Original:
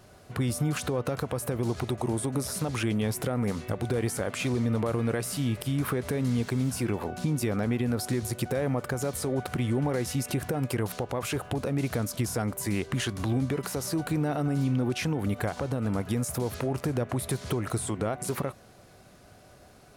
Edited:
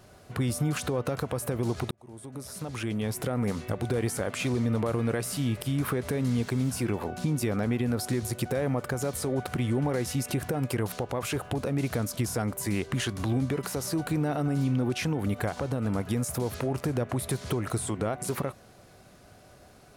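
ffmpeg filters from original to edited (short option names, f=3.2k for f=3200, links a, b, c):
-filter_complex "[0:a]asplit=2[a][b];[a]atrim=end=1.91,asetpts=PTS-STARTPTS,afade=t=out:st=1.906:d=0.004:c=hsin[c];[b]atrim=start=1.91,asetpts=PTS-STARTPTS,afade=t=in:d=1.49[d];[c][d]concat=n=2:v=0:a=1"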